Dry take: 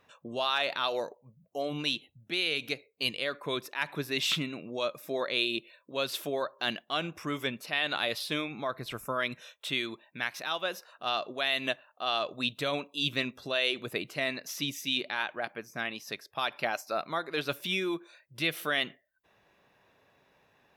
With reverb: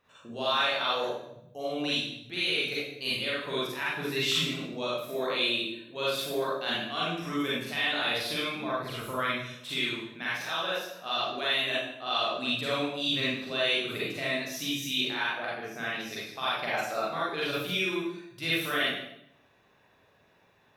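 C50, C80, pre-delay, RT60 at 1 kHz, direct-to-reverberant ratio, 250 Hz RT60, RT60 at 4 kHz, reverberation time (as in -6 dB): -3.0 dB, 2.5 dB, 35 ms, 0.70 s, -8.0 dB, 0.95 s, 0.65 s, 0.80 s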